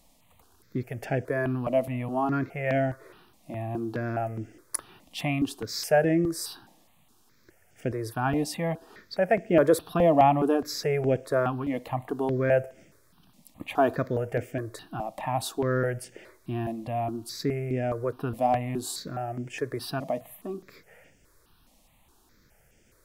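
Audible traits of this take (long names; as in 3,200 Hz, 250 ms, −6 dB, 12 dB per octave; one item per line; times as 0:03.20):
notches that jump at a steady rate 4.8 Hz 400–4,000 Hz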